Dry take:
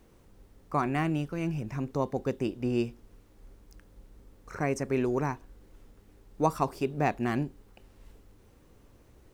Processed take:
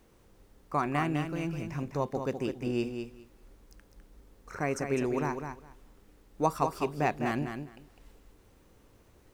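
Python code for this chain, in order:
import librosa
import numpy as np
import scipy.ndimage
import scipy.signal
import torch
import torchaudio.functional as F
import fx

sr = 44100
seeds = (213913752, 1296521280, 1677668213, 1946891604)

p1 = fx.low_shelf(x, sr, hz=420.0, db=-4.0)
y = p1 + fx.echo_feedback(p1, sr, ms=204, feedback_pct=17, wet_db=-7, dry=0)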